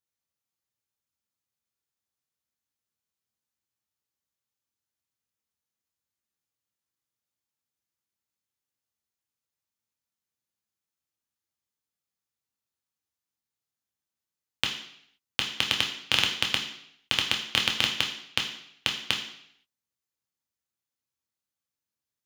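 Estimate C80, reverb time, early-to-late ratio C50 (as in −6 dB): 10.5 dB, 0.70 s, 8.0 dB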